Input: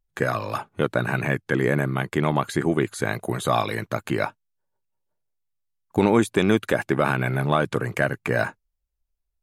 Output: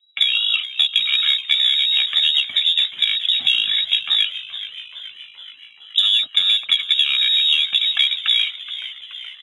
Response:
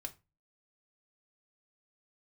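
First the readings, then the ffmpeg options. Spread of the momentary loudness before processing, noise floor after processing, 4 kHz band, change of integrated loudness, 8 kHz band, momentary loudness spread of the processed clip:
7 LU, −44 dBFS, +26.5 dB, +8.5 dB, can't be measured, 15 LU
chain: -filter_complex "[0:a]aecho=1:1:1.9:0.94,lowpass=frequency=3300:width_type=q:width=0.5098,lowpass=frequency=3300:width_type=q:width=0.6013,lowpass=frequency=3300:width_type=q:width=0.9,lowpass=frequency=3300:width_type=q:width=2.563,afreqshift=-3900,acrossover=split=560[link_01][link_02];[link_01]highpass=120[link_03];[link_02]aexciter=amount=4:drive=3.7:freq=2700[link_04];[link_03][link_04]amix=inputs=2:normalize=0,equalizer=frequency=560:width_type=o:width=0.8:gain=-6.5,acompressor=threshold=-14dB:ratio=6,asplit=2[link_05][link_06];[link_06]asplit=7[link_07][link_08][link_09][link_10][link_11][link_12][link_13];[link_07]adelay=425,afreqshift=-97,volume=-14dB[link_14];[link_08]adelay=850,afreqshift=-194,volume=-18.2dB[link_15];[link_09]adelay=1275,afreqshift=-291,volume=-22.3dB[link_16];[link_10]adelay=1700,afreqshift=-388,volume=-26.5dB[link_17];[link_11]adelay=2125,afreqshift=-485,volume=-30.6dB[link_18];[link_12]adelay=2550,afreqshift=-582,volume=-34.8dB[link_19];[link_13]adelay=2975,afreqshift=-679,volume=-38.9dB[link_20];[link_14][link_15][link_16][link_17][link_18][link_19][link_20]amix=inputs=7:normalize=0[link_21];[link_05][link_21]amix=inputs=2:normalize=0"

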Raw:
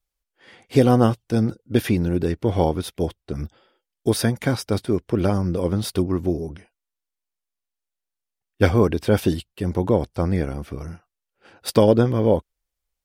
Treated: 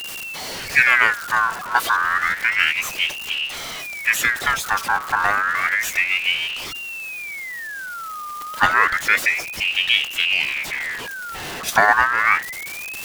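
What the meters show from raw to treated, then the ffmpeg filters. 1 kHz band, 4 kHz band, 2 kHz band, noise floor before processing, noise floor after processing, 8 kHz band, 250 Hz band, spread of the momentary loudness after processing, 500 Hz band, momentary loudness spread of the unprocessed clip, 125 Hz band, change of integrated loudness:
+10.0 dB, +13.0 dB, +20.5 dB, −85 dBFS, −32 dBFS, +8.0 dB, −20.5 dB, 13 LU, −13.0 dB, 14 LU, −21.0 dB, +2.5 dB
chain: -af "aeval=exprs='val(0)+0.5*0.0631*sgn(val(0))':channel_layout=same,aeval=exprs='val(0)*sin(2*PI*2000*n/s+2000*0.4/0.3*sin(2*PI*0.3*n/s))':channel_layout=same,volume=2dB"

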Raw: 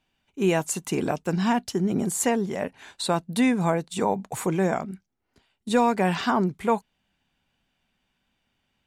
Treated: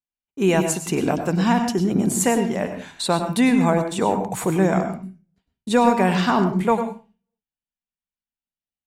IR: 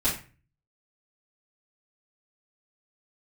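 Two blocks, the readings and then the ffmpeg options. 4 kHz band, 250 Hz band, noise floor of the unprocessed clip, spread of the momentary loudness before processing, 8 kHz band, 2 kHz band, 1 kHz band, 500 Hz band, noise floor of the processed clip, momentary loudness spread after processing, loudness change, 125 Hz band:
+4.0 dB, +5.5 dB, −76 dBFS, 9 LU, +4.0 dB, +4.0 dB, +4.5 dB, +4.5 dB, below −85 dBFS, 10 LU, +4.5 dB, +5.5 dB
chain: -filter_complex "[0:a]agate=range=-33dB:threshold=-49dB:ratio=3:detection=peak,asplit=2[link_01][link_02];[1:a]atrim=start_sample=2205,asetrate=48510,aresample=44100,adelay=94[link_03];[link_02][link_03]afir=irnorm=-1:irlink=0,volume=-17dB[link_04];[link_01][link_04]amix=inputs=2:normalize=0,volume=3.5dB"

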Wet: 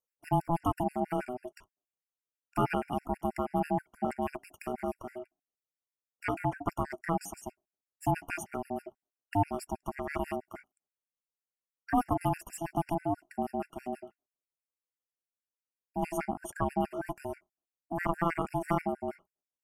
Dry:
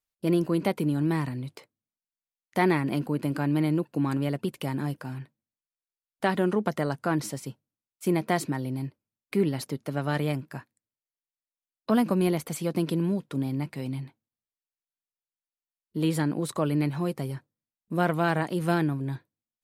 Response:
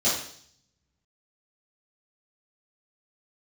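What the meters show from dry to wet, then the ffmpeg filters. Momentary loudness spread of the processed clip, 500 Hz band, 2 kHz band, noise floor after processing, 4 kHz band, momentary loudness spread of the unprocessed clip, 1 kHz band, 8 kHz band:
12 LU, −5.5 dB, −6.5 dB, below −85 dBFS, −13.0 dB, 12 LU, +1.0 dB, −6.5 dB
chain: -af "aeval=exprs='val(0)*sin(2*PI*500*n/s)':channel_layout=same,asuperstop=centerf=3900:order=4:qfactor=1.7,afftfilt=real='re*gt(sin(2*PI*6.2*pts/sr)*(1-2*mod(floor(b*sr/1024/1400),2)),0)':imag='im*gt(sin(2*PI*6.2*pts/sr)*(1-2*mod(floor(b*sr/1024/1400),2)),0)':win_size=1024:overlap=0.75"

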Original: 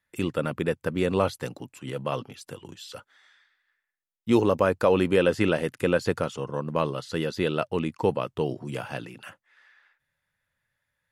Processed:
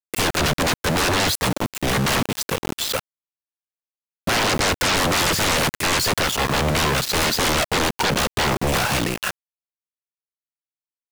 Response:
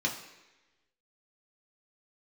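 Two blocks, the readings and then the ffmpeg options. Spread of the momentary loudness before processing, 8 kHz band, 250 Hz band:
20 LU, +23.5 dB, +2.0 dB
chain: -af "aeval=exprs='val(0)*gte(abs(val(0)),0.00944)':channel_layout=same,alimiter=limit=-16dB:level=0:latency=1:release=21,aeval=exprs='0.158*sin(PI/2*8.91*val(0)/0.158)':channel_layout=same"

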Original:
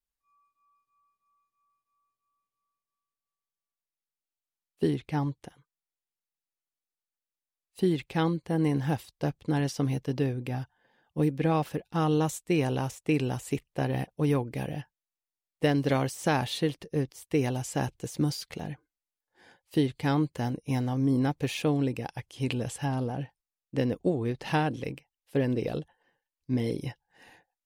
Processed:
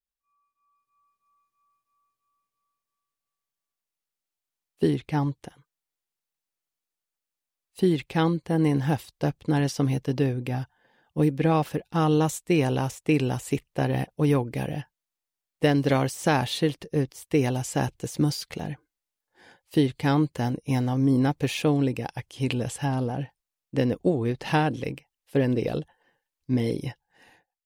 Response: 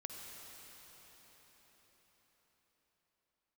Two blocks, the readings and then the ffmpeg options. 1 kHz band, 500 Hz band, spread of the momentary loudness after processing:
+4.0 dB, +4.0 dB, 10 LU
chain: -af "dynaudnorm=framelen=250:gausssize=7:maxgain=9dB,volume=-5dB"

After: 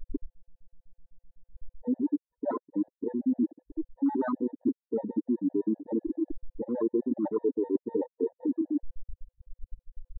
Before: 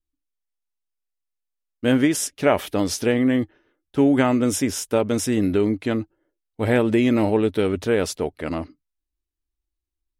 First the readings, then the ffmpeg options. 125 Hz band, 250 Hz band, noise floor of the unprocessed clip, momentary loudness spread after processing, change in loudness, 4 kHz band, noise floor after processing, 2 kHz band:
below −20 dB, −8.0 dB, −83 dBFS, 6 LU, −10.0 dB, below −40 dB, below −85 dBFS, −24.5 dB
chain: -filter_complex "[0:a]aeval=exprs='val(0)+0.5*0.0891*sgn(val(0))':channel_layout=same,acrossover=split=110[link_01][link_02];[link_01]alimiter=level_in=8.5dB:limit=-24dB:level=0:latency=1:release=122,volume=-8.5dB[link_03];[link_02]highpass=200,equalizer=frequency=290:width_type=q:width=4:gain=7,equalizer=frequency=620:width_type=q:width=4:gain=-4,equalizer=frequency=1000:width_type=q:width=4:gain=8,lowpass=frequency=3000:width=0.5412,lowpass=frequency=3000:width=1.3066[link_04];[link_03][link_04]amix=inputs=2:normalize=0,flanger=delay=9.6:depth=4.1:regen=29:speed=0.7:shape=triangular,asoftclip=type=hard:threshold=-11.5dB,acrusher=bits=7:dc=4:mix=0:aa=0.000001,aemphasis=mode=reproduction:type=50kf,afftfilt=real='re*gte(hypot(re,im),0.251)':imag='im*gte(hypot(re,im),0.251)':win_size=1024:overlap=0.75,areverse,acompressor=threshold=-30dB:ratio=6,areverse,afwtdn=0.0126,afftfilt=real='re*gt(sin(2*PI*7.9*pts/sr)*(1-2*mod(floor(b*sr/1024/490),2)),0)':imag='im*gt(sin(2*PI*7.9*pts/sr)*(1-2*mod(floor(b*sr/1024/490),2)),0)':win_size=1024:overlap=0.75,volume=6dB"

